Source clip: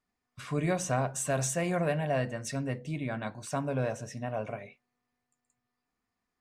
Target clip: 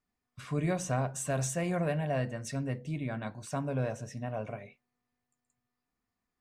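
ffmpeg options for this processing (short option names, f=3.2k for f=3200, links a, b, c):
-af "lowshelf=f=240:g=5,volume=-3.5dB"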